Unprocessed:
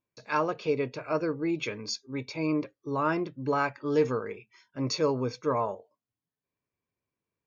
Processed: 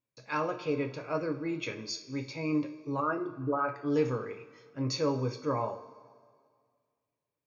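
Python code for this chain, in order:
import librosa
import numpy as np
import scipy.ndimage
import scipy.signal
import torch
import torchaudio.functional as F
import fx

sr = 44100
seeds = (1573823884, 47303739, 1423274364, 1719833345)

y = fx.envelope_sharpen(x, sr, power=2.0, at=(3.0, 3.69))
y = fx.rev_double_slope(y, sr, seeds[0], early_s=0.33, late_s=2.0, knee_db=-17, drr_db=4.0)
y = y * 10.0 ** (-4.5 / 20.0)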